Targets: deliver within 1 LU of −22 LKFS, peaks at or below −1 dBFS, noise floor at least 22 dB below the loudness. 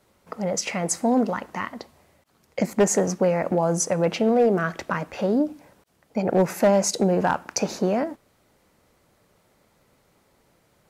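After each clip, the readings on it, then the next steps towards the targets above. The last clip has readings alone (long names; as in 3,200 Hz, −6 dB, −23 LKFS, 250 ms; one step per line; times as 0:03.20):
share of clipped samples 0.3%; peaks flattened at −12.0 dBFS; integrated loudness −23.5 LKFS; sample peak −12.0 dBFS; target loudness −22.0 LKFS
→ clipped peaks rebuilt −12 dBFS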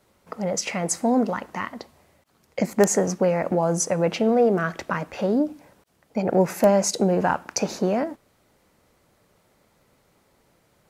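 share of clipped samples 0.0%; integrated loudness −23.0 LKFS; sample peak −3.0 dBFS; target loudness −22.0 LKFS
→ level +1 dB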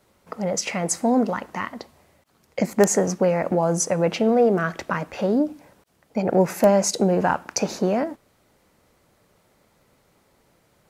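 integrated loudness −22.0 LKFS; sample peak −2.0 dBFS; background noise floor −63 dBFS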